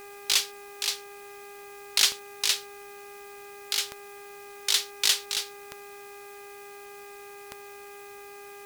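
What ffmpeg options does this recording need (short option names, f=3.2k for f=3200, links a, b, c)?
-af "adeclick=t=4,bandreject=f=404.3:t=h:w=4,bandreject=f=808.6:t=h:w=4,bandreject=f=1.2129k:t=h:w=4,bandreject=f=1.6172k:t=h:w=4,bandreject=f=2.0215k:t=h:w=4,bandreject=f=2.4258k:t=h:w=4,bandreject=f=2.5k:w=30,afwtdn=0.0022"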